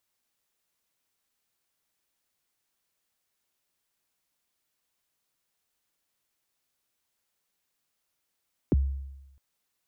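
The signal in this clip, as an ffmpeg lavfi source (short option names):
-f lavfi -i "aevalsrc='0.141*pow(10,-3*t/0.99)*sin(2*PI*(430*0.025/log(68/430)*(exp(log(68/430)*min(t,0.025)/0.025)-1)+68*max(t-0.025,0)))':d=0.66:s=44100"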